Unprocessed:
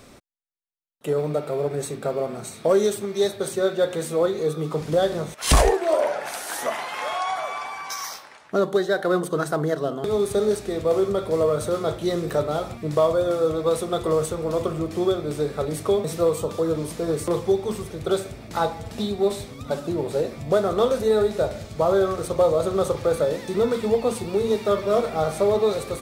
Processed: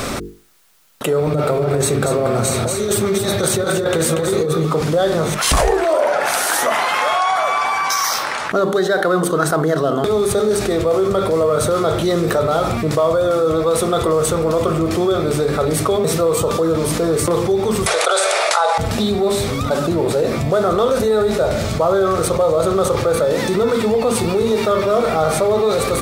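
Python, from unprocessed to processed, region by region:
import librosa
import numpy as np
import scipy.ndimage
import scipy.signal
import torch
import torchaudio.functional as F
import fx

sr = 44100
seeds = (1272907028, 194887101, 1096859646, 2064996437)

y = fx.chain(x, sr, fx.peak_eq(hz=90.0, db=12.0, octaves=0.79),
    fx.over_compress(threshold_db=-26.0, ratio=-0.5),
    fx.echo_single(ms=235, db=-8.5), at=(1.2, 4.65))
y = fx.chain(y, sr, fx.steep_highpass(hz=530.0, slope=36),
    fx.resample_bad(factor=2, down='none', up='filtered'),
    fx.env_flatten(amount_pct=70), at=(17.86, 18.78))
y = fx.peak_eq(y, sr, hz=1300.0, db=4.0, octaves=0.45)
y = fx.hum_notches(y, sr, base_hz=50, count=9)
y = fx.env_flatten(y, sr, amount_pct=70)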